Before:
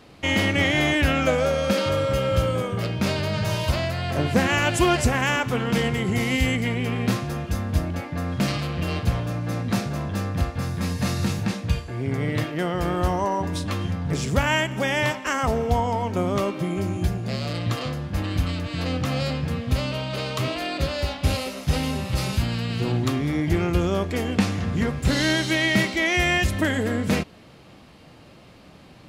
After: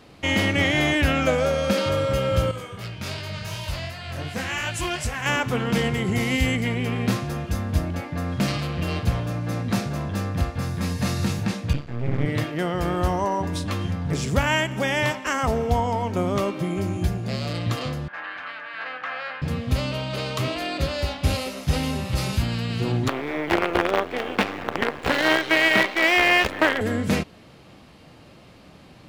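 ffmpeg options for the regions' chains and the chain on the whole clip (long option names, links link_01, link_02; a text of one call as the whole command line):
ffmpeg -i in.wav -filter_complex "[0:a]asettb=1/sr,asplit=3[link_01][link_02][link_03];[link_01]atrim=end=2.514[link_04];[link_02]atrim=start=2.51:end=5.26,asetpts=PTS-STARTPTS,afade=type=in:duration=0.004:curve=qsin,afade=type=out:start_time=2.746:duration=0.004:curve=qsin,flanger=delay=18:depth=5.3:speed=2.7,equalizer=frequency=330:width=0.4:gain=-9.5[link_05];[link_03]atrim=start=5.256[link_06];[link_04][link_05]acrossfade=duration=0.004:curve1=hsin:curve2=qsin[link_07];[link_07][link_06]acrossfade=duration=0.004:curve1=qsin:curve2=hsin,asettb=1/sr,asplit=3[link_08][link_09][link_10];[link_08]atrim=end=11.734[link_11];[link_09]atrim=start=11.73:end=12.26,asetpts=PTS-STARTPTS,afade=type=in:duration=0.004:curve=qsin,afade=type=out:start_time=0.526:duration=0.004:curve=qsin,highpass=100,lowpass=4400,equalizer=frequency=140:width_type=o:width=0.53:gain=12.5,aeval=exprs='max(val(0),0)':channel_layout=same[link_12];[link_10]atrim=start=12.256[link_13];[link_11][link_12]acrossfade=duration=0.004:curve1=hsin:curve2=qsin[link_14];[link_14][link_13]acrossfade=duration=0.004:curve1=qsin:curve2=hsin,asettb=1/sr,asplit=3[link_15][link_16][link_17];[link_15]atrim=end=18.084[link_18];[link_16]atrim=start=18.08:end=19.42,asetpts=PTS-STARTPTS,afade=type=in:duration=0.004:curve=qsin,afade=type=out:start_time=1.336:duration=0.004:curve=qsin,asuperpass=centerf=1400:order=4:qfactor=0.78,equalizer=frequency=1600:width=3.3:gain=10.5[link_19];[link_17]atrim=start=19.416[link_20];[link_18][link_19]acrossfade=duration=0.004:curve1=hsin:curve2=qsin[link_21];[link_21][link_20]acrossfade=duration=0.004:curve1=qsin:curve2=hsin,asettb=1/sr,asplit=3[link_22][link_23][link_24];[link_22]atrim=end=23.084[link_25];[link_23]atrim=start=23.08:end=26.81,asetpts=PTS-STARTPTS,afade=type=in:duration=0.004:curve=qsin,afade=type=out:start_time=3.726:duration=0.004:curve=qsin,acontrast=50,acrusher=bits=3:dc=4:mix=0:aa=0.000001,acrossover=split=320 3300:gain=0.112 1 0.1[link_26][link_27][link_28];[link_26][link_27][link_28]amix=inputs=3:normalize=0[link_29];[link_24]atrim=start=26.806[link_30];[link_25][link_29]acrossfade=duration=0.004:curve1=hsin:curve2=qsin[link_31];[link_31][link_30]acrossfade=duration=0.004:curve1=qsin:curve2=hsin" out.wav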